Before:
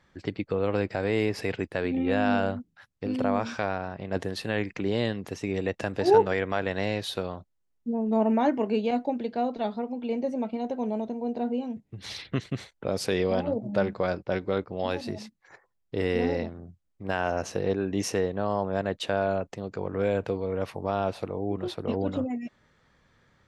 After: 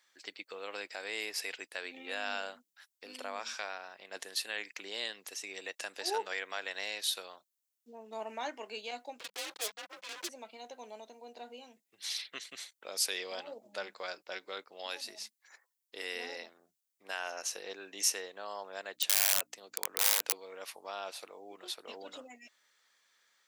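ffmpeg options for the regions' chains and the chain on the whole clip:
ffmpeg -i in.wav -filter_complex "[0:a]asettb=1/sr,asplit=3[link_01][link_02][link_03];[link_01]atrim=end=9.194[link_04];[link_02]atrim=start=9.19:end=10.29,asetpts=PTS-STARTPTS,afade=type=in:duration=0.004:curve=qsin,afade=type=out:start_time=1.096:duration=0.004:curve=qsin,aecho=1:1:3.3:0.74,atrim=end_sample=48510,acrusher=bits=4:mix=0:aa=0.5,afreqshift=-200[link_05];[link_03]atrim=start=10.286[link_06];[link_04][link_05]acrossfade=duration=0.004:curve1=hsin:curve2=qsin[link_07];[link_07][link_06]acrossfade=duration=0.004:curve1=qsin:curve2=hsin,asettb=1/sr,asplit=3[link_08][link_09][link_10];[link_08]atrim=end=18.954[link_11];[link_09]atrim=start=18.95:end=20.33,asetpts=PTS-STARTPTS,afade=type=in:duration=0.004:curve=qsin,afade=type=out:start_time=1.376:duration=0.004:curve=qsin,highpass=frequency=88:width=0.5412,highpass=frequency=88:width=1.3066,aeval=exprs='val(0)+0.0112*(sin(2*PI*60*n/s)+sin(2*PI*2*60*n/s)/2+sin(2*PI*3*60*n/s)/3+sin(2*PI*4*60*n/s)/4+sin(2*PI*5*60*n/s)/5)':channel_layout=same,aeval=exprs='(mod(10*val(0)+1,2)-1)/10':channel_layout=same[link_12];[link_10]atrim=start=20.326[link_13];[link_11][link_12]acrossfade=duration=0.004:curve1=hsin:curve2=qsin[link_14];[link_14][link_13]acrossfade=duration=0.004:curve1=qsin:curve2=hsin,highpass=310,aderivative,volume=6.5dB" out.wav

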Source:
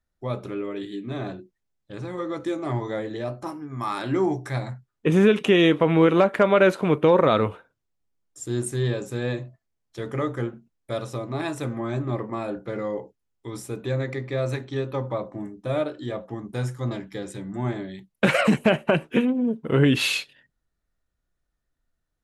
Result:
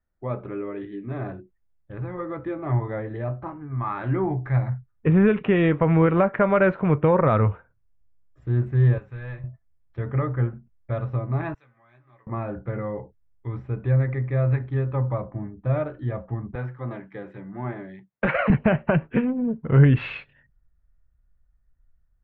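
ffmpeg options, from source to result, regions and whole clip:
ffmpeg -i in.wav -filter_complex "[0:a]asettb=1/sr,asplit=3[link_01][link_02][link_03];[link_01]atrim=end=8.984[link_04];[link_02]atrim=start=8.98:end=9.44,asetpts=PTS-STARTPTS,afade=type=in:duration=0.004:curve=qsin,afade=type=out:start_time=0.456:duration=0.004:curve=qsin,equalizer=frequency=240:width=0.35:gain=-15,volume=33.5dB,asoftclip=hard,volume=-33.5dB[link_05];[link_03]atrim=start=9.436[link_06];[link_04][link_05]acrossfade=duration=0.004:curve1=hsin:curve2=qsin[link_07];[link_07][link_06]acrossfade=duration=0.004:curve1=qsin:curve2=hsin,asettb=1/sr,asplit=3[link_08][link_09][link_10];[link_08]atrim=end=11.544[link_11];[link_09]atrim=start=11.54:end=12.27,asetpts=PTS-STARTPTS,afade=type=in:duration=0.004:curve=qsin,afade=type=out:start_time=0.726:duration=0.004:curve=qsin,bandpass=frequency=6700:width_type=q:width=2.1,asplit=2[link_12][link_13];[link_13]adelay=16,volume=-5dB[link_14];[link_12][link_14]amix=inputs=2:normalize=0,atrim=end_sample=32193[link_15];[link_10]atrim=start=12.266[link_16];[link_11][link_15]acrossfade=duration=0.004:curve1=hsin:curve2=qsin[link_17];[link_17][link_16]acrossfade=duration=0.004:curve1=qsin:curve2=hsin,asettb=1/sr,asplit=3[link_18][link_19][link_20];[link_18]atrim=end=16.554[link_21];[link_19]atrim=start=16.55:end=18.5,asetpts=PTS-STARTPTS,afade=type=in:duration=0.004:curve=qsin,afade=type=out:start_time=1.946:duration=0.004:curve=qsin,highpass=260,volume=12.5dB,asoftclip=hard,volume=-12.5dB[link_22];[link_20]atrim=start=18.496[link_23];[link_21][link_22]acrossfade=duration=0.004:curve1=hsin:curve2=qsin[link_24];[link_24][link_23]acrossfade=duration=0.004:curve1=qsin:curve2=hsin,asubboost=boost=7:cutoff=110,lowpass=frequency=2100:width=0.5412,lowpass=frequency=2100:width=1.3066" out.wav

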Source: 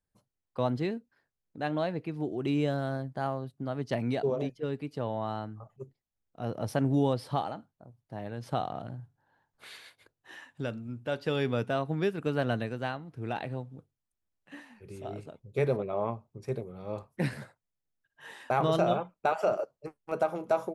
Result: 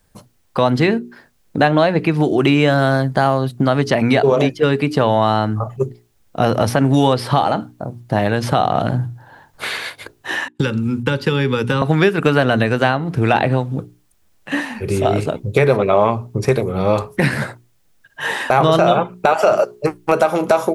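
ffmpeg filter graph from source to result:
ffmpeg -i in.wav -filter_complex "[0:a]asettb=1/sr,asplit=3[link_01][link_02][link_03];[link_01]atrim=end=10.484[link_04];[link_02]atrim=start=10.48:end=11.82,asetpts=PTS-STARTPTS,afade=type=in:duration=0.004:curve=qsin,afade=type=out:start_time=1.336:duration=0.004:curve=qsin,agate=range=-32dB:threshold=-51dB:ratio=16:release=100:detection=peak,acrossover=split=150|2700[link_05][link_06][link_07];[link_05]acompressor=threshold=-46dB:ratio=4[link_08];[link_06]acompressor=threshold=-42dB:ratio=4[link_09];[link_07]acompressor=threshold=-55dB:ratio=4[link_10];[link_08][link_09][link_10]amix=inputs=3:normalize=0,asuperstop=centerf=660:order=12:qfactor=3[link_11];[link_03]atrim=start=11.816[link_12];[link_04][link_11]acrossfade=duration=0.004:curve1=hsin:curve2=qsin[link_13];[link_13][link_12]acrossfade=duration=0.004:curve1=qsin:curve2=hsin,bandreject=frequency=60:width_type=h:width=6,bandreject=frequency=120:width_type=h:width=6,bandreject=frequency=180:width_type=h:width=6,bandreject=frequency=240:width_type=h:width=6,bandreject=frequency=300:width_type=h:width=6,bandreject=frequency=360:width_type=h:width=6,bandreject=frequency=420:width_type=h:width=6,acrossover=split=1000|2400[link_14][link_15][link_16];[link_14]acompressor=threshold=-41dB:ratio=4[link_17];[link_15]acompressor=threshold=-47dB:ratio=4[link_18];[link_16]acompressor=threshold=-57dB:ratio=4[link_19];[link_17][link_18][link_19]amix=inputs=3:normalize=0,alimiter=level_in=28dB:limit=-1dB:release=50:level=0:latency=1,volume=-1dB" out.wav

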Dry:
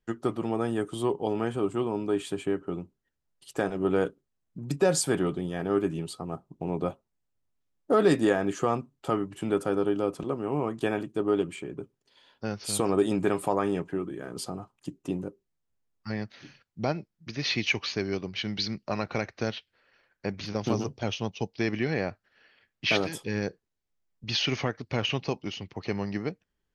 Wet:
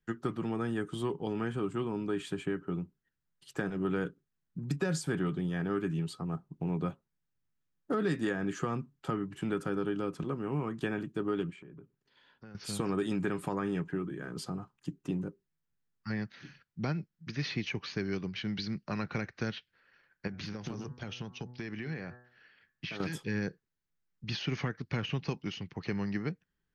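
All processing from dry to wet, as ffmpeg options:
ffmpeg -i in.wav -filter_complex "[0:a]asettb=1/sr,asplit=3[link_01][link_02][link_03];[link_01]atrim=end=11.504[link_04];[link_02]atrim=start=11.5:end=12.55,asetpts=PTS-STARTPTS,afade=type=in:duration=0.004:curve=qsin,afade=type=out:start_time=1.046:duration=0.004:curve=qsin,lowpass=frequency=3000:poles=1,acompressor=threshold=-48dB:ratio=3:attack=3.2:release=140:knee=1:detection=peak[link_05];[link_03]atrim=start=12.546[link_06];[link_04][link_05]acrossfade=duration=0.004:curve1=hsin:curve2=qsin[link_07];[link_07][link_06]acrossfade=duration=0.004:curve1=qsin:curve2=hsin,asettb=1/sr,asplit=3[link_08][link_09][link_10];[link_08]atrim=end=20.274[link_11];[link_09]atrim=start=20.27:end=23,asetpts=PTS-STARTPTS,afade=type=in:duration=0.004:curve=qsin,afade=type=out:start_time=2.726:duration=0.004:curve=qsin,bandreject=frequency=122.8:width_type=h:width=4,bandreject=frequency=245.6:width_type=h:width=4,bandreject=frequency=368.4:width_type=h:width=4,bandreject=frequency=491.2:width_type=h:width=4,bandreject=frequency=614:width_type=h:width=4,bandreject=frequency=736.8:width_type=h:width=4,bandreject=frequency=859.6:width_type=h:width=4,bandreject=frequency=982.4:width_type=h:width=4,bandreject=frequency=1105.2:width_type=h:width=4,bandreject=frequency=1228:width_type=h:width=4,bandreject=frequency=1350.8:width_type=h:width=4,bandreject=frequency=1473.6:width_type=h:width=4,bandreject=frequency=1596.4:width_type=h:width=4,bandreject=frequency=1719.2:width_type=h:width=4,bandreject=frequency=1842:width_type=h:width=4,acompressor=threshold=-33dB:ratio=5:attack=3.2:release=140:knee=1:detection=peak[link_12];[link_10]atrim=start=22.996[link_13];[link_11][link_12]acrossfade=duration=0.004:curve1=hsin:curve2=qsin[link_14];[link_14][link_13]acrossfade=duration=0.004:curve1=qsin:curve2=hsin,equalizer=frequency=160:width_type=o:width=0.67:gain=8,equalizer=frequency=630:width_type=o:width=0.67:gain=-5,equalizer=frequency=1600:width_type=o:width=0.67:gain=6,equalizer=frequency=10000:width_type=o:width=0.67:gain=-6,acrossover=split=480|1000[link_15][link_16][link_17];[link_15]acompressor=threshold=-25dB:ratio=4[link_18];[link_16]acompressor=threshold=-42dB:ratio=4[link_19];[link_17]acompressor=threshold=-34dB:ratio=4[link_20];[link_18][link_19][link_20]amix=inputs=3:normalize=0,volume=-4dB" out.wav

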